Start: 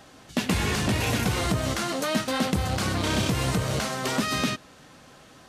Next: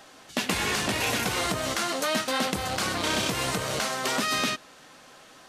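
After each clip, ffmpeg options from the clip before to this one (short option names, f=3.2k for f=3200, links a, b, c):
-af "equalizer=f=71:w=0.33:g=-14.5,volume=2dB"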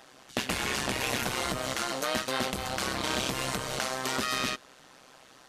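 -af "tremolo=f=130:d=0.857"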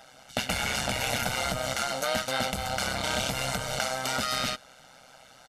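-af "aecho=1:1:1.4:0.68"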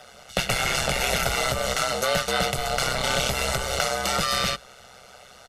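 -af "afreqshift=-60,volume=5dB"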